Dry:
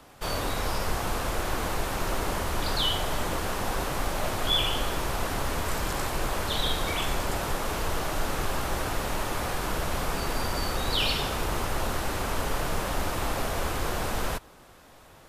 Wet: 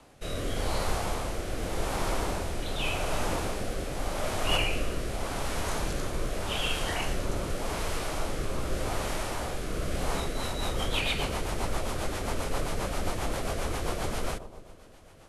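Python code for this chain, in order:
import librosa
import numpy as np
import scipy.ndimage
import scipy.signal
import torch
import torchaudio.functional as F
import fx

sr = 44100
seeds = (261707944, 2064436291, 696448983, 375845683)

y = fx.echo_bbd(x, sr, ms=122, stages=1024, feedback_pct=68, wet_db=-13.5)
y = fx.formant_shift(y, sr, semitones=-3)
y = fx.rotary_switch(y, sr, hz=0.85, then_hz=7.5, switch_at_s=9.95)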